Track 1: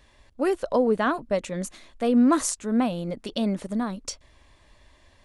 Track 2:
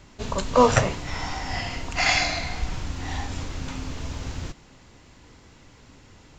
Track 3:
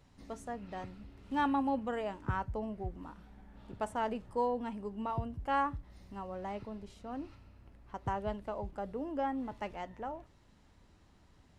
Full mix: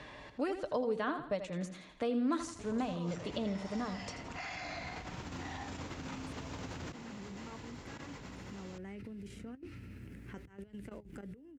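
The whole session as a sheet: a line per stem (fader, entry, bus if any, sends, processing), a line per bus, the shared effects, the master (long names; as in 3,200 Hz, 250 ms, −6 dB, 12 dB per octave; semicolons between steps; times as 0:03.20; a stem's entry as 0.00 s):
−8.0 dB, 0.00 s, no bus, no send, echo send −10.5 dB, low-pass filter 5,300 Hz 12 dB per octave; comb filter 6.6 ms, depth 37%
−4.5 dB, 2.40 s, bus A, no send, no echo send, downward compressor, threshold −24 dBFS, peak gain reduction 13 dB
−3.0 dB, 2.40 s, bus A, no send, no echo send, flat-topped bell 830 Hz −12 dB 1.3 octaves; compressor whose output falls as the input rises −49 dBFS, ratio −1; drawn EQ curve 120 Hz 0 dB, 890 Hz −9 dB, 2,200 Hz −4 dB, 4,000 Hz −14 dB, 8,500 Hz −6 dB
bus A: 0.0 dB, output level in coarse steps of 14 dB; brickwall limiter −38.5 dBFS, peak gain reduction 14.5 dB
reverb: not used
echo: repeating echo 82 ms, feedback 34%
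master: high-pass filter 58 Hz; multiband upward and downward compressor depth 70%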